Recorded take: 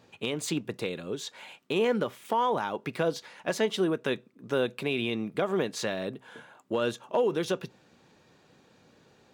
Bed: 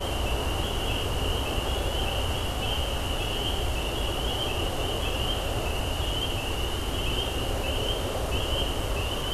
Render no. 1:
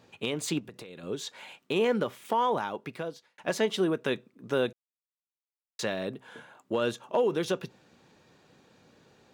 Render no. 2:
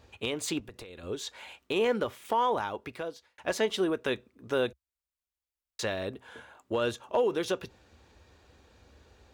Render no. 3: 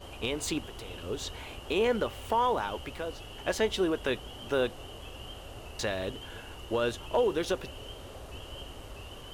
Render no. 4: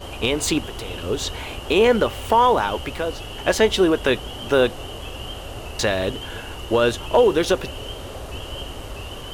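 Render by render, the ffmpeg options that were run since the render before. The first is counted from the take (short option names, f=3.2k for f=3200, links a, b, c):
-filter_complex "[0:a]asettb=1/sr,asplit=3[a][b][c];[a]atrim=end=0.594[d];[b]atrim=start=0.59:end=1.03,asetpts=PTS-STARTPTS,afade=t=in:d=0.004:c=qsin,afade=t=out:st=0.436:d=0.004:c=qsin,acompressor=threshold=-40dB:ratio=16:attack=3.2:release=140:knee=1:detection=peak[e];[c]atrim=start=1.026[f];[d][e]acrossfade=d=0.004:c1=hsin:c2=qsin[g];[g][f]acrossfade=d=0.004:c1=qsin:c2=hsin,asplit=4[h][i][j][k];[h]atrim=end=3.38,asetpts=PTS-STARTPTS,afade=t=out:st=2.52:d=0.86[l];[i]atrim=start=3.38:end=4.73,asetpts=PTS-STARTPTS,afade=t=in:d=0.004:c=hsin,afade=t=out:st=1.346:d=0.004:c=hsin[m];[j]atrim=start=4.73:end=5.79,asetpts=PTS-STARTPTS,volume=0[n];[k]atrim=start=5.79,asetpts=PTS-STARTPTS,afade=t=in:d=0.004:c=hsin[o];[l][m][n][o]concat=n=4:v=0:a=1"
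-af "lowshelf=f=100:t=q:w=3:g=14"
-filter_complex "[1:a]volume=-16dB[a];[0:a][a]amix=inputs=2:normalize=0"
-af "volume=11dB"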